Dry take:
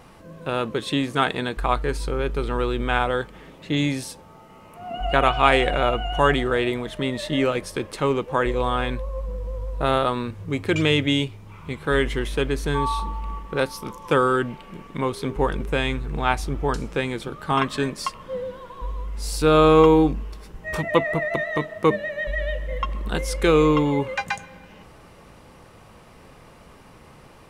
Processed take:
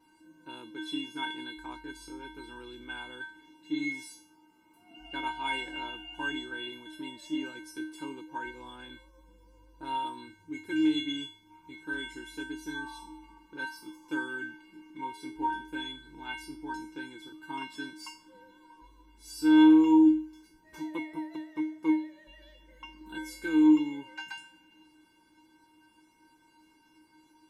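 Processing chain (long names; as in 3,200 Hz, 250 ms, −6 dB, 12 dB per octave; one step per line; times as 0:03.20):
tuned comb filter 310 Hz, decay 0.41 s, harmonics odd, mix 100%
level +6.5 dB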